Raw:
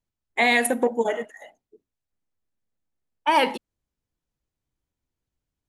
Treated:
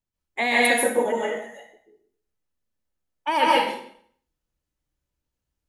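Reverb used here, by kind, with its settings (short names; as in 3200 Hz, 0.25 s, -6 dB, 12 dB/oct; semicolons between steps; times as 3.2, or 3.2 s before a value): plate-style reverb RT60 0.59 s, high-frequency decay 0.95×, pre-delay 0.12 s, DRR -5 dB; gain -4.5 dB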